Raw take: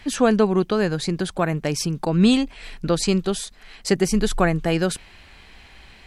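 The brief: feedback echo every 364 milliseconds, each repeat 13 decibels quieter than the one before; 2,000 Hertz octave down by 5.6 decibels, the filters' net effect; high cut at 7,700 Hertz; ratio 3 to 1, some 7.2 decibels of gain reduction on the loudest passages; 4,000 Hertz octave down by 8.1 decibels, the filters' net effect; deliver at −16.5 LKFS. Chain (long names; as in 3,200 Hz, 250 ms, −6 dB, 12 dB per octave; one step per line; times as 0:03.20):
low-pass filter 7,700 Hz
parametric band 2,000 Hz −5.5 dB
parametric band 4,000 Hz −8.5 dB
downward compressor 3 to 1, threshold −22 dBFS
repeating echo 364 ms, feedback 22%, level −13 dB
level +10.5 dB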